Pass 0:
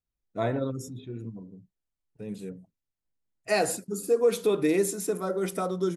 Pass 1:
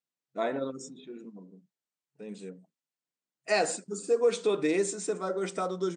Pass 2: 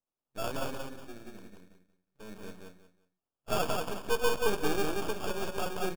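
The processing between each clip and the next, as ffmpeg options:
ffmpeg -i in.wav -af "afftfilt=real='re*between(b*sr/4096,130,9100)':imag='im*between(b*sr/4096,130,9100)':win_size=4096:overlap=0.75,lowshelf=frequency=250:gain=-9.5" out.wav
ffmpeg -i in.wav -af "acrusher=samples=22:mix=1:aa=0.000001,aeval=exprs='max(val(0),0)':channel_layout=same,aecho=1:1:182|364|546:0.668|0.16|0.0385" out.wav

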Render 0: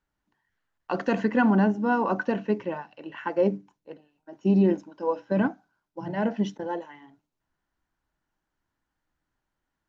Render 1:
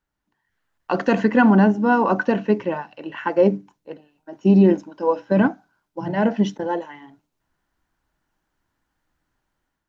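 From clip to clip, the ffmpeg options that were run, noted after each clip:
ffmpeg -i in.wav -af "dynaudnorm=framelen=370:gausssize=3:maxgain=7dB" out.wav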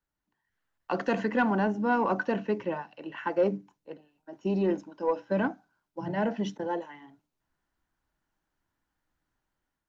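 ffmpeg -i in.wav -filter_complex "[0:a]acrossover=split=350|910[link_01][link_02][link_03];[link_01]alimiter=limit=-19dB:level=0:latency=1[link_04];[link_04][link_02][link_03]amix=inputs=3:normalize=0,asoftclip=type=tanh:threshold=-7dB,volume=-7dB" out.wav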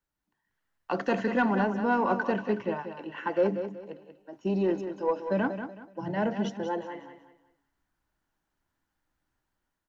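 ffmpeg -i in.wav -af "aecho=1:1:187|374|561|748:0.355|0.11|0.0341|0.0106" out.wav

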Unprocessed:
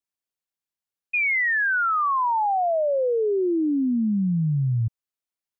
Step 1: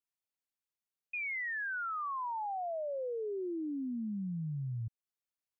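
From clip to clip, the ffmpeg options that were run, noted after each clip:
ffmpeg -i in.wav -af "alimiter=level_in=4dB:limit=-24dB:level=0:latency=1:release=211,volume=-4dB,volume=-6dB" out.wav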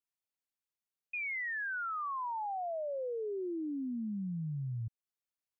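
ffmpeg -i in.wav -af anull out.wav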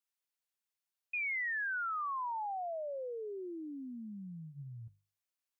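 ffmpeg -i in.wav -af "lowshelf=frequency=460:gain=-12,bandreject=frequency=50:width_type=h:width=6,bandreject=frequency=100:width_type=h:width=6,bandreject=frequency=150:width_type=h:width=6,volume=2dB" out.wav

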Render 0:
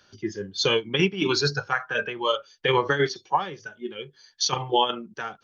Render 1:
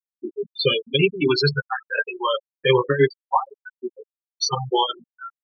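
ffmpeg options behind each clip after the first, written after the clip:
ffmpeg -i in.wav -af "afftfilt=real='re*gte(hypot(re,im),0.158)':imag='im*gte(hypot(re,im),0.158)':win_size=1024:overlap=0.75,aecho=1:1:7.5:0.92,volume=1.5dB" out.wav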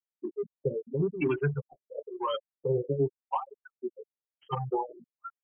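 ffmpeg -i in.wav -filter_complex "[0:a]acrossover=split=280[link_01][link_02];[link_02]acompressor=threshold=-22dB:ratio=3[link_03];[link_01][link_03]amix=inputs=2:normalize=0,asplit=2[link_04][link_05];[link_05]asoftclip=type=tanh:threshold=-24.5dB,volume=-5dB[link_06];[link_04][link_06]amix=inputs=2:normalize=0,afftfilt=real='re*lt(b*sr/1024,620*pow(3300/620,0.5+0.5*sin(2*PI*0.95*pts/sr)))':imag='im*lt(b*sr/1024,620*pow(3300/620,0.5+0.5*sin(2*PI*0.95*pts/sr)))':win_size=1024:overlap=0.75,volume=-8dB" out.wav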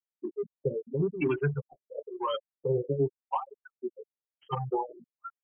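ffmpeg -i in.wav -af anull out.wav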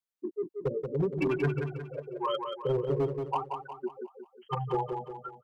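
ffmpeg -i in.wav -filter_complex "[0:a]asoftclip=type=hard:threshold=-23dB,asplit=2[link_01][link_02];[link_02]aecho=0:1:180|360|540|720|900:0.501|0.226|0.101|0.0457|0.0206[link_03];[link_01][link_03]amix=inputs=2:normalize=0" out.wav

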